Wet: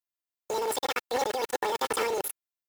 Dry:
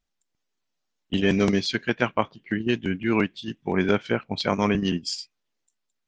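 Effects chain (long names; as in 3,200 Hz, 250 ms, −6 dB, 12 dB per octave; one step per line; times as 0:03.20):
brickwall limiter −15 dBFS, peak gain reduction 10 dB
mains-hum notches 60/120/180/240/300/360/420/480/540/600 Hz
bit reduction 5 bits
compressor whose output falls as the input rises −30 dBFS, ratio −1
high-pass filter 130 Hz 6 dB per octave
high-shelf EQ 6,600 Hz +3.5 dB
comb filter 5.1 ms, depth 50%
change of speed 2.26×
high-shelf EQ 2,500 Hz −8 dB
level +3 dB
Nellymoser 88 kbit/s 44,100 Hz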